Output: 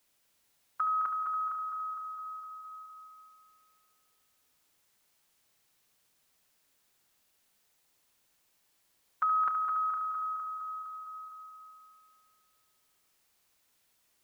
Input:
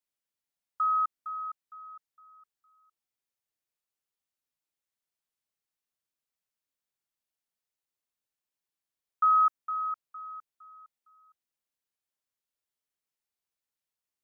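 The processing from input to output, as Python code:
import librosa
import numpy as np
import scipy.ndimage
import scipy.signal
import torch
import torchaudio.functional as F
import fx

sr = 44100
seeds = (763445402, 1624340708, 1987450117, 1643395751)

p1 = x + fx.echo_heads(x, sr, ms=71, heads='first and third', feedback_pct=61, wet_db=-10, dry=0)
y = fx.spectral_comp(p1, sr, ratio=2.0)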